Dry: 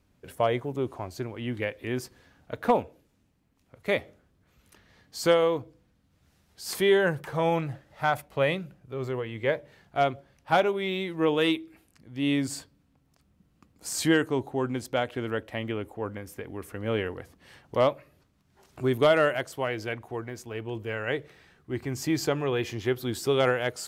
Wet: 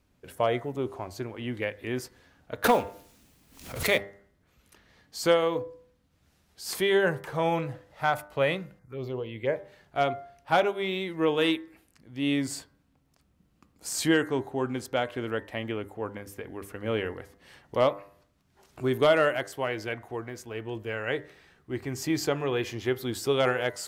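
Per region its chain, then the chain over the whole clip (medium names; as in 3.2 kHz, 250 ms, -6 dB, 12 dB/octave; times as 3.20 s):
2.64–3.98 s: companding laws mixed up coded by mu + treble shelf 2.6 kHz +9 dB + swell ahead of each attack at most 91 dB/s
8.79–9.56 s: touch-sensitive phaser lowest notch 480 Hz, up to 3.6 kHz, full sweep at -24 dBFS + dynamic bell 1.3 kHz, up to -5 dB, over -45 dBFS, Q 1.9
whole clip: peaking EQ 130 Hz -2.5 dB 1.8 oct; de-hum 99.6 Hz, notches 21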